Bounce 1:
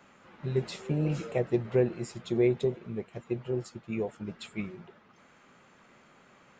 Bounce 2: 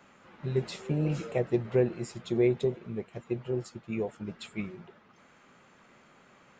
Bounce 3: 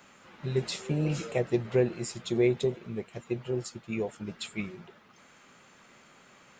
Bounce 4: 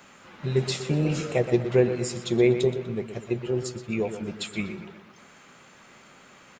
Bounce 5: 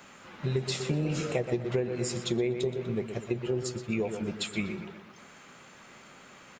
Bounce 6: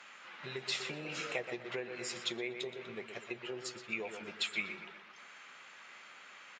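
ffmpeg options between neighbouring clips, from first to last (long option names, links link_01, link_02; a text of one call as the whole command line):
ffmpeg -i in.wav -af anull out.wav
ffmpeg -i in.wav -af "highshelf=frequency=3000:gain=10" out.wav
ffmpeg -i in.wav -filter_complex "[0:a]asplit=2[link_01][link_02];[link_02]adelay=122,lowpass=frequency=4300:poles=1,volume=-10dB,asplit=2[link_03][link_04];[link_04]adelay=122,lowpass=frequency=4300:poles=1,volume=0.5,asplit=2[link_05][link_06];[link_06]adelay=122,lowpass=frequency=4300:poles=1,volume=0.5,asplit=2[link_07][link_08];[link_08]adelay=122,lowpass=frequency=4300:poles=1,volume=0.5,asplit=2[link_09][link_10];[link_10]adelay=122,lowpass=frequency=4300:poles=1,volume=0.5[link_11];[link_01][link_03][link_05][link_07][link_09][link_11]amix=inputs=6:normalize=0,volume=4.5dB" out.wav
ffmpeg -i in.wav -af "acompressor=threshold=-25dB:ratio=12" out.wav
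ffmpeg -i in.wav -af "bandpass=frequency=2300:width_type=q:width=0.82:csg=0,volume=1.5dB" out.wav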